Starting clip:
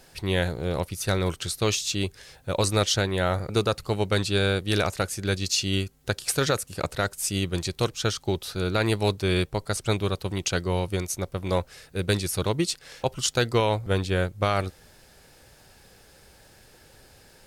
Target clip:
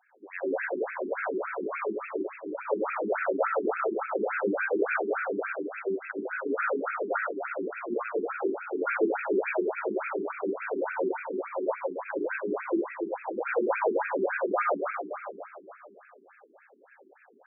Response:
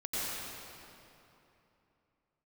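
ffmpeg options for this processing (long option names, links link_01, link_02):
-filter_complex "[0:a]bass=frequency=250:gain=-9,treble=frequency=4000:gain=-7[link_01];[1:a]atrim=start_sample=2205,asetrate=48510,aresample=44100[link_02];[link_01][link_02]afir=irnorm=-1:irlink=0,afftfilt=real='re*between(b*sr/1024,280*pow(1900/280,0.5+0.5*sin(2*PI*3.5*pts/sr))/1.41,280*pow(1900/280,0.5+0.5*sin(2*PI*3.5*pts/sr))*1.41)':imag='im*between(b*sr/1024,280*pow(1900/280,0.5+0.5*sin(2*PI*3.5*pts/sr))/1.41,280*pow(1900/280,0.5+0.5*sin(2*PI*3.5*pts/sr))*1.41)':win_size=1024:overlap=0.75"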